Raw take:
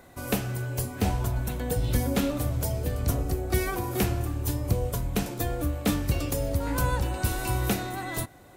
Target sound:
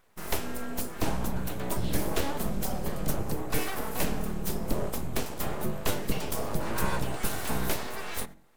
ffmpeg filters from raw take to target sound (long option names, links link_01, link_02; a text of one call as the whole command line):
ffmpeg -i in.wav -af "agate=range=-11dB:threshold=-40dB:ratio=16:detection=peak,bandreject=frequency=45.37:width_type=h:width=4,bandreject=frequency=90.74:width_type=h:width=4,bandreject=frequency=136.11:width_type=h:width=4,bandreject=frequency=181.48:width_type=h:width=4,bandreject=frequency=226.85:width_type=h:width=4,bandreject=frequency=272.22:width_type=h:width=4,bandreject=frequency=317.59:width_type=h:width=4,bandreject=frequency=362.96:width_type=h:width=4,aeval=exprs='abs(val(0))':channel_layout=same" out.wav